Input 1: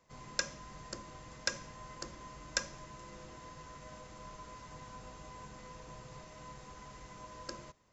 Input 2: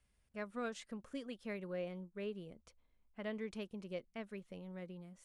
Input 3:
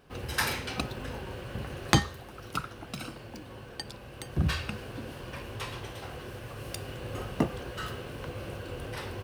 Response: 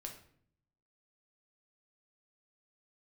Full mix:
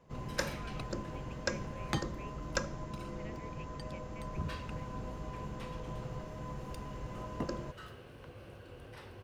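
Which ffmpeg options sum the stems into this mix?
-filter_complex "[0:a]tiltshelf=frequency=1100:gain=8.5,volume=2.5dB[link_01];[1:a]lowpass=frequency=2500:width_type=q:width=4.9,volume=-13dB[link_02];[2:a]highshelf=frequency=4700:gain=-5.5,volume=-12dB[link_03];[link_01][link_02][link_03]amix=inputs=3:normalize=0"

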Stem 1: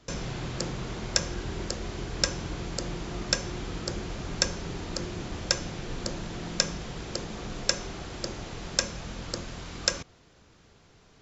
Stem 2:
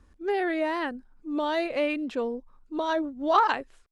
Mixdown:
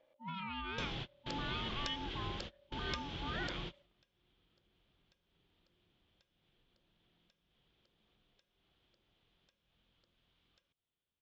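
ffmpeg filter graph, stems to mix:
ffmpeg -i stem1.wav -i stem2.wav -filter_complex "[0:a]acompressor=threshold=-34dB:ratio=6,adelay=700,volume=-5.5dB[link_01];[1:a]alimiter=limit=-22dB:level=0:latency=1:release=79,aeval=exprs='val(0)*sin(2*PI*570*n/s)':channel_layout=same,volume=-12dB,asplit=2[link_02][link_03];[link_03]apad=whole_len=525562[link_04];[link_01][link_04]sidechaingate=range=-33dB:threshold=-58dB:ratio=16:detection=peak[link_05];[link_05][link_02]amix=inputs=2:normalize=0,lowpass=frequency=3300:width_type=q:width=4.8" out.wav

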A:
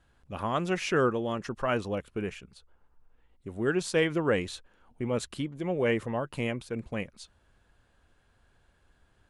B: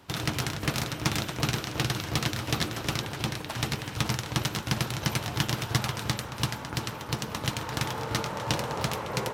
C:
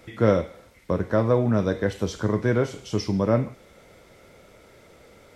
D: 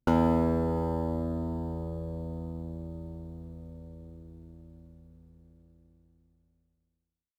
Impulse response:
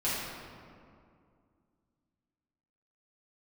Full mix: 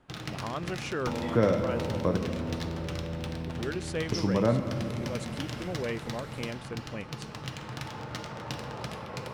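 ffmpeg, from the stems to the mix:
-filter_complex "[0:a]volume=-3.5dB[link_01];[1:a]bandreject=frequency=970:width=15,adynamicsmooth=sensitivity=7.5:basefreq=2100,volume=-9dB,asplit=2[link_02][link_03];[link_03]volume=-11dB[link_04];[2:a]adelay=1150,volume=3dB,asplit=3[link_05][link_06][link_07];[link_05]atrim=end=2.17,asetpts=PTS-STARTPTS,afade=type=out:start_time=2.166:duration=0.004:curve=hsin[link_08];[link_06]atrim=start=2.17:end=4.12,asetpts=PTS-STARTPTS,volume=0[link_09];[link_07]atrim=start=4.12,asetpts=PTS-STARTPTS,afade=type=in:duration=0.004:curve=hsin[link_10];[link_08][link_09][link_10]concat=n=3:v=0:a=1,asplit=2[link_11][link_12];[link_12]volume=-14.5dB[link_13];[3:a]acompressor=threshold=-30dB:ratio=6,adelay=1000,volume=3dB[link_14];[4:a]atrim=start_sample=2205[link_15];[link_04][link_13]amix=inputs=2:normalize=0[link_16];[link_16][link_15]afir=irnorm=-1:irlink=0[link_17];[link_01][link_02][link_11][link_14][link_17]amix=inputs=5:normalize=0,acompressor=threshold=-35dB:ratio=1.5"

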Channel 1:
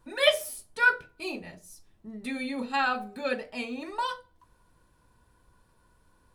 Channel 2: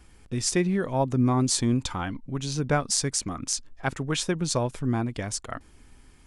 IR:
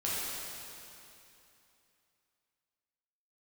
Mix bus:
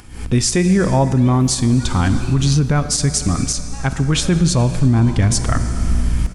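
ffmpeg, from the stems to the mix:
-filter_complex "[0:a]acompressor=threshold=-34dB:ratio=6,adelay=1000,volume=-13.5dB,asplit=2[link_01][link_02];[link_02]volume=-4dB[link_03];[1:a]acompressor=mode=upward:threshold=-37dB:ratio=2.5,aeval=exprs='val(0)+0.00447*(sin(2*PI*60*n/s)+sin(2*PI*2*60*n/s)/2+sin(2*PI*3*60*n/s)/3+sin(2*PI*4*60*n/s)/4+sin(2*PI*5*60*n/s)/5)':channel_layout=same,asubboost=boost=3.5:cutoff=240,volume=2dB,asplit=2[link_04][link_05];[link_05]volume=-16.5dB[link_06];[2:a]atrim=start_sample=2205[link_07];[link_03][link_06]amix=inputs=2:normalize=0[link_08];[link_08][link_07]afir=irnorm=-1:irlink=0[link_09];[link_01][link_04][link_09]amix=inputs=3:normalize=0,dynaudnorm=framelen=110:gausssize=3:maxgain=14dB,alimiter=limit=-6dB:level=0:latency=1:release=41"

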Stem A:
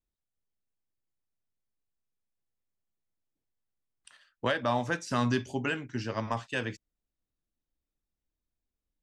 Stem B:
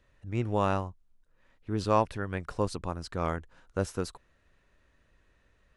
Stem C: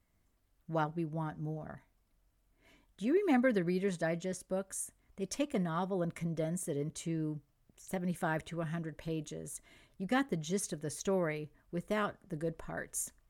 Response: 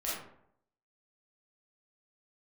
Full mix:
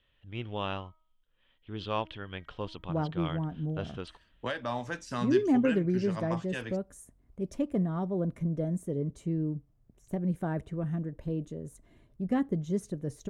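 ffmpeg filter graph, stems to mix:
-filter_complex "[0:a]volume=-5.5dB[link_01];[1:a]lowpass=frequency=3200:width_type=q:width=11,bandreject=frequency=316.9:width_type=h:width=4,bandreject=frequency=633.8:width_type=h:width=4,bandreject=frequency=950.7:width_type=h:width=4,bandreject=frequency=1267.6:width_type=h:width=4,bandreject=frequency=1584.5:width_type=h:width=4,bandreject=frequency=1901.4:width_type=h:width=4,bandreject=frequency=2218.3:width_type=h:width=4,volume=-8dB[link_02];[2:a]tiltshelf=frequency=850:gain=9.5,adelay=2200,volume=-2.5dB[link_03];[link_01][link_02][link_03]amix=inputs=3:normalize=0"

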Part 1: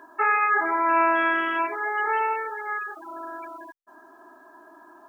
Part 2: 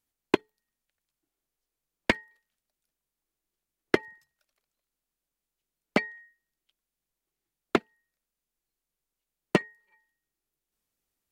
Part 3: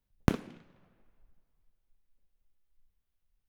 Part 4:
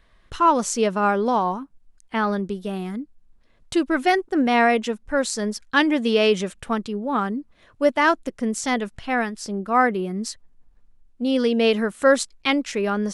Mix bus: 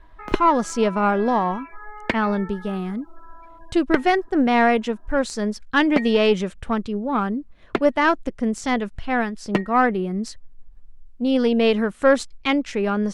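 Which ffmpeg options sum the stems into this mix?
ffmpeg -i stem1.wav -i stem2.wav -i stem3.wav -i stem4.wav -filter_complex "[0:a]acrossover=split=950|2300[link_01][link_02][link_03];[link_01]acompressor=threshold=-36dB:ratio=4[link_04];[link_02]acompressor=threshold=-33dB:ratio=4[link_05];[link_03]acompressor=threshold=-39dB:ratio=4[link_06];[link_04][link_05][link_06]amix=inputs=3:normalize=0,asplit=2[link_07][link_08];[link_08]adelay=10.8,afreqshift=1.2[link_09];[link_07][link_09]amix=inputs=2:normalize=1,volume=-6dB[link_10];[1:a]volume=1dB[link_11];[2:a]highpass=360,acrusher=bits=6:mix=0:aa=0.000001,volume=-6dB[link_12];[3:a]lowshelf=frequency=95:gain=12,aeval=exprs='0.562*(cos(1*acos(clip(val(0)/0.562,-1,1)))-cos(1*PI/2))+0.0316*(cos(4*acos(clip(val(0)/0.562,-1,1)))-cos(4*PI/2))':channel_layout=same,volume=0dB[link_13];[link_10][link_11][link_12][link_13]amix=inputs=4:normalize=0,lowpass=frequency=3600:poles=1" out.wav

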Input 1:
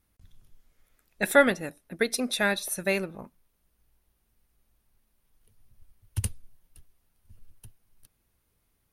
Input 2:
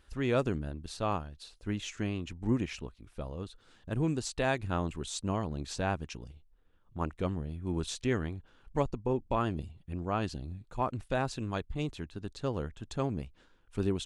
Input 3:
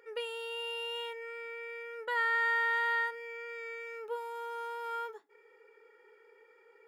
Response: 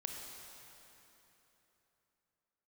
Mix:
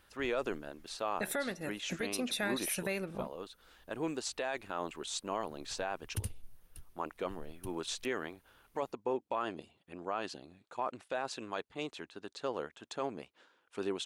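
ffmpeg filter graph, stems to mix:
-filter_complex "[0:a]acompressor=threshold=-34dB:ratio=5,volume=2dB[link_01];[1:a]highpass=460,highshelf=frequency=5500:gain=-5.5,volume=2.5dB[link_02];[link_01][link_02]amix=inputs=2:normalize=0,alimiter=limit=-24dB:level=0:latency=1:release=13"

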